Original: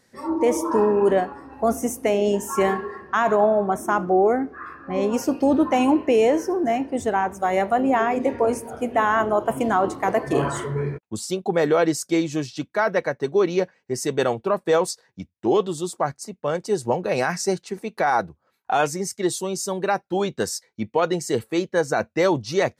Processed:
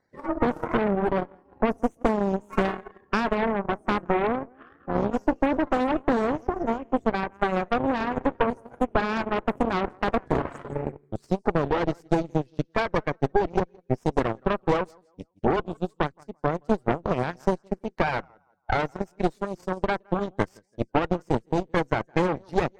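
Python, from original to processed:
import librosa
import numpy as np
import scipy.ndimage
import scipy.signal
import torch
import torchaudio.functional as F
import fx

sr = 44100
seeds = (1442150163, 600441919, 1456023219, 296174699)

p1 = fx.spec_quant(x, sr, step_db=30)
p2 = fx.high_shelf(p1, sr, hz=7400.0, db=-9.0)
p3 = p2 + fx.echo_feedback(p2, sr, ms=167, feedback_pct=31, wet_db=-15.5, dry=0)
p4 = fx.cheby_harmonics(p3, sr, harmonics=(6,), levels_db=(-9,), full_scale_db=-7.5)
p5 = fx.transient(p4, sr, attack_db=7, sustain_db=-11)
p6 = fx.high_shelf(p5, sr, hz=2600.0, db=-11.5)
p7 = fx.record_warp(p6, sr, rpm=45.0, depth_cents=100.0)
y = p7 * librosa.db_to_amplitude(-8.0)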